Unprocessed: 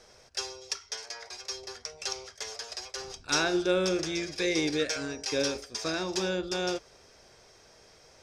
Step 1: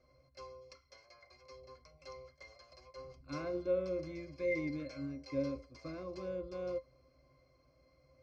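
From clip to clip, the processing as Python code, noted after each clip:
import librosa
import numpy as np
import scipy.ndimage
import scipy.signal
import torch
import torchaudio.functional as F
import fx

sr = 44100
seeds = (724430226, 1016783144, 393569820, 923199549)

y = fx.octave_resonator(x, sr, note='C', decay_s=0.11)
y = y * 10.0 ** (1.0 / 20.0)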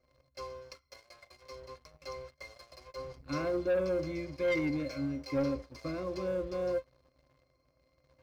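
y = fx.leveller(x, sr, passes=2)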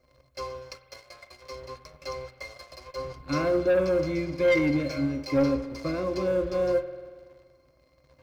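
y = fx.rev_spring(x, sr, rt60_s=1.7, pass_ms=(47,), chirp_ms=50, drr_db=11.0)
y = y * 10.0 ** (7.5 / 20.0)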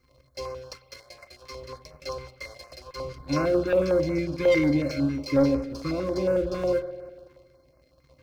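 y = fx.filter_held_notch(x, sr, hz=11.0, low_hz=620.0, high_hz=3400.0)
y = y * 10.0 ** (2.5 / 20.0)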